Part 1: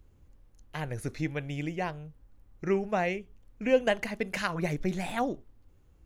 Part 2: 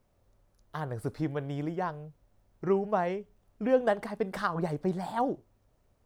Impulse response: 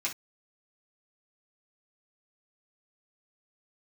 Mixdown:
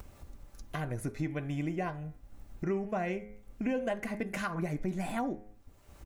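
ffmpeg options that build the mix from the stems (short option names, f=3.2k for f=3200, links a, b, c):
-filter_complex "[0:a]bandreject=f=104.5:t=h:w=4,bandreject=f=209:t=h:w=4,bandreject=f=313.5:t=h:w=4,bandreject=f=418:t=h:w=4,bandreject=f=522.5:t=h:w=4,bandreject=f=627:t=h:w=4,bandreject=f=731.5:t=h:w=4,bandreject=f=836:t=h:w=4,bandreject=f=940.5:t=h:w=4,bandreject=f=1.045k:t=h:w=4,bandreject=f=1.1495k:t=h:w=4,bandreject=f=1.254k:t=h:w=4,bandreject=f=1.3585k:t=h:w=4,bandreject=f=1.463k:t=h:w=4,bandreject=f=1.5675k:t=h:w=4,bandreject=f=1.672k:t=h:w=4,bandreject=f=1.7765k:t=h:w=4,bandreject=f=1.881k:t=h:w=4,bandreject=f=1.9855k:t=h:w=4,bandreject=f=2.09k:t=h:w=4,bandreject=f=2.1945k:t=h:w=4,bandreject=f=2.299k:t=h:w=4,bandreject=f=2.4035k:t=h:w=4,bandreject=f=2.508k:t=h:w=4,agate=range=-33dB:threshold=-48dB:ratio=3:detection=peak,equalizer=f=250:t=o:w=1:g=4,equalizer=f=1k:t=o:w=1:g=-5,equalizer=f=4k:t=o:w=1:g=-11,volume=-1.5dB[a];[1:a]highpass=620,aecho=1:1:5.1:0.41,adelay=2.5,volume=-7.5dB,asplit=2[b][c];[c]volume=-9dB[d];[2:a]atrim=start_sample=2205[e];[d][e]afir=irnorm=-1:irlink=0[f];[a][b][f]amix=inputs=3:normalize=0,acompressor=mode=upward:threshold=-31dB:ratio=2.5,alimiter=limit=-23dB:level=0:latency=1:release=193"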